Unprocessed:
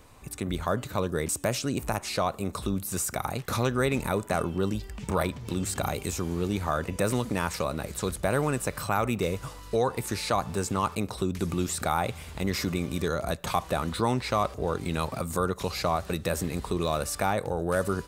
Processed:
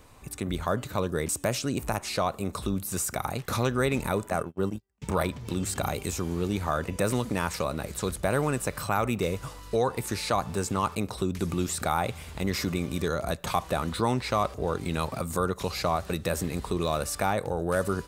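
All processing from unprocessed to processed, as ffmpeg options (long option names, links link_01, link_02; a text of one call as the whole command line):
ffmpeg -i in.wav -filter_complex "[0:a]asettb=1/sr,asplit=3[link_01][link_02][link_03];[link_01]atrim=end=4.304[link_04];[link_02]atrim=start=4.3:end=5.02,asetpts=PTS-STARTPTS,afade=type=in:duration=0.004:curve=qsin,afade=type=out:start_time=0.716:duration=0.004:curve=qsin,equalizer=frequency=3700:width=1.1:gain=-8,agate=range=-37dB:threshold=-29dB:ratio=16:release=100:detection=peak,highpass=74[link_05];[link_03]atrim=start=5.016[link_06];[link_04][link_05]acrossfade=duration=0.004:curve1=hsin:curve2=qsin[link_07];[link_07][link_06]acrossfade=duration=0.004:curve1=qsin:curve2=hsin" out.wav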